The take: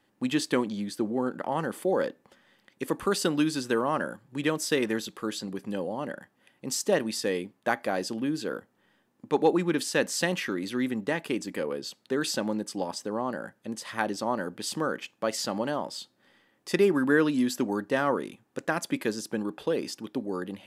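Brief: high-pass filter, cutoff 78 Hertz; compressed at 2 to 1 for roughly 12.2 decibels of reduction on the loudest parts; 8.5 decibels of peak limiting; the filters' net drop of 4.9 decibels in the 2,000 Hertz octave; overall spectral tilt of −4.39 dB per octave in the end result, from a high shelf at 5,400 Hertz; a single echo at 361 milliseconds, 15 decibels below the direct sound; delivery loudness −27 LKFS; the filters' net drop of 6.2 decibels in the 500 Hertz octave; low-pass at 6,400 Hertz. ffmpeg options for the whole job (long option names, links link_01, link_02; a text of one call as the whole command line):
ffmpeg -i in.wav -af "highpass=78,lowpass=6400,equalizer=frequency=500:width_type=o:gain=-7.5,equalizer=frequency=2000:width_type=o:gain=-5.5,highshelf=frequency=5400:gain=-3.5,acompressor=threshold=-46dB:ratio=2,alimiter=level_in=7.5dB:limit=-24dB:level=0:latency=1,volume=-7.5dB,aecho=1:1:361:0.178,volume=17dB" out.wav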